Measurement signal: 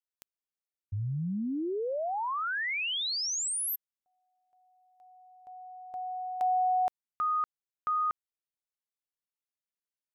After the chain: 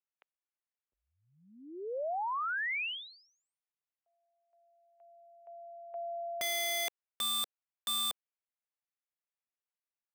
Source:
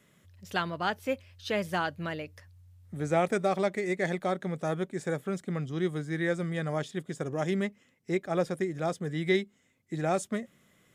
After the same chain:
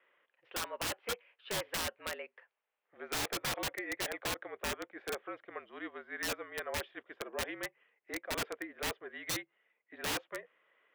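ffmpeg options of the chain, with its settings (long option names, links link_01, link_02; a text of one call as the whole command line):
ffmpeg -i in.wav -af "highpass=frequency=540:width_type=q:width=0.5412,highpass=frequency=540:width_type=q:width=1.307,lowpass=frequency=2900:width_type=q:width=0.5176,lowpass=frequency=2900:width_type=q:width=0.7071,lowpass=frequency=2900:width_type=q:width=1.932,afreqshift=-54,aeval=exprs='(mod(23.7*val(0)+1,2)-1)/23.7':channel_layout=same,volume=-2dB" out.wav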